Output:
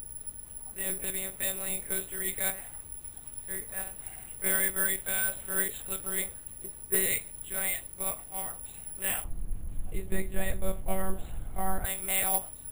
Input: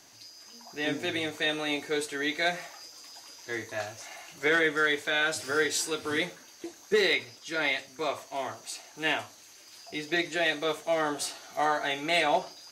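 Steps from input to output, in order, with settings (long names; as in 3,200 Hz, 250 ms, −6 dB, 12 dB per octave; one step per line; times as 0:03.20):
noise gate with hold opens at −41 dBFS
one-pitch LPC vocoder at 8 kHz 190 Hz
background noise brown −41 dBFS
bad sample-rate conversion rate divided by 4×, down none, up zero stuff
0:09.24–0:11.85: spectral tilt −3.5 dB per octave
level −8.5 dB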